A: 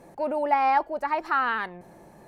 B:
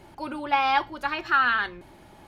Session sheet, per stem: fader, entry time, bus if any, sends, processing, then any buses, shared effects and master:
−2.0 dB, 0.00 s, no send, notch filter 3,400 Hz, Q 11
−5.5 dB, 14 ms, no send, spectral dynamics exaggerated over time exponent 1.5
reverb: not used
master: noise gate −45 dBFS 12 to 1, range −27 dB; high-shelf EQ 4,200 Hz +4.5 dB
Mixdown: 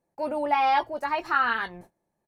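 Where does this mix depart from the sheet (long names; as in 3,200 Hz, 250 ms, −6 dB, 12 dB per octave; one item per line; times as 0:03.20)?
stem A: missing notch filter 3,400 Hz, Q 11
stem B: polarity flipped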